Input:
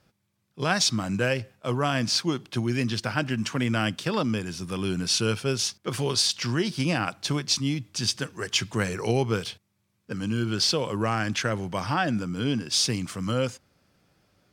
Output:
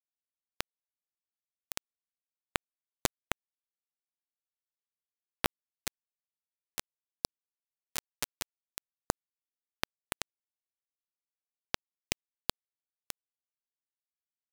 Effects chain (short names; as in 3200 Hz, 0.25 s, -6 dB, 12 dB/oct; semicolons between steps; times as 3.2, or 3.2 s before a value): random spectral dropouts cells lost 38%; high shelf 10000 Hz +6.5 dB; soft clip -22 dBFS, distortion -13 dB; in parallel at -6.5 dB: companded quantiser 4-bit; on the sum: low shelf 170 Hz +4.5 dB; notches 50/100/150/200/250/300/350/400/450/500 Hz; on a send: feedback echo 0.734 s, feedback 18%, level -3 dB; on the sum: compressor 12:1, threshold -30 dBFS, peak gain reduction 12 dB; bit-crush 4-bit; Doppler distortion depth 0.65 ms; gain +9.5 dB